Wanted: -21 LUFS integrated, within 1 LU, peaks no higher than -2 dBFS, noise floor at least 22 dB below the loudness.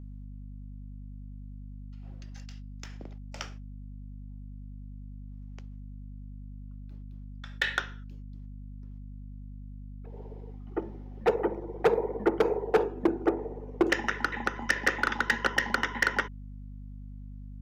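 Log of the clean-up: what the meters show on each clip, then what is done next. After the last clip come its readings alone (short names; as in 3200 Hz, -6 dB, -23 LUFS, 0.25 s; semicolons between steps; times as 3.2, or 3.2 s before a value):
clipped 0.3%; flat tops at -15.5 dBFS; hum 50 Hz; harmonics up to 250 Hz; hum level -40 dBFS; loudness -29.0 LUFS; peak -15.5 dBFS; loudness target -21.0 LUFS
-> clip repair -15.5 dBFS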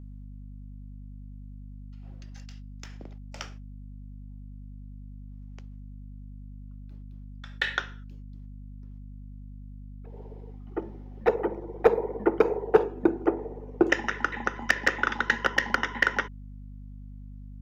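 clipped 0.0%; hum 50 Hz; harmonics up to 250 Hz; hum level -40 dBFS
-> notches 50/100/150/200/250 Hz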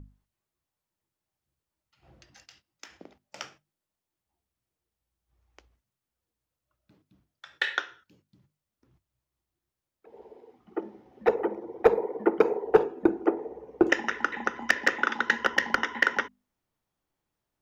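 hum none; loudness -27.0 LUFS; peak -6.0 dBFS; loudness target -21.0 LUFS
-> gain +6 dB; limiter -2 dBFS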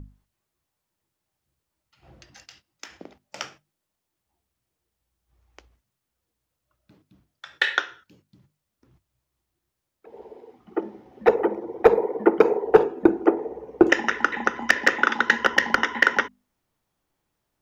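loudness -21.5 LUFS; peak -2.0 dBFS; noise floor -82 dBFS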